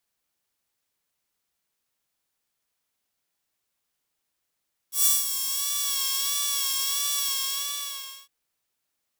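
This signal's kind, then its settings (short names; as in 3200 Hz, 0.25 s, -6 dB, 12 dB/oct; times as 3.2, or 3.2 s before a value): synth patch with vibrato C#5, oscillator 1 saw, oscillator 2 square, interval +12 st, detune 12 cents, oscillator 2 level -0.5 dB, sub -28 dB, noise -7 dB, filter highpass, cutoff 2900 Hz, Q 0.78, filter envelope 1.5 oct, filter decay 1.09 s, attack 0.129 s, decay 0.19 s, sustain -10.5 dB, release 1.05 s, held 2.31 s, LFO 1.5 Hz, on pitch 47 cents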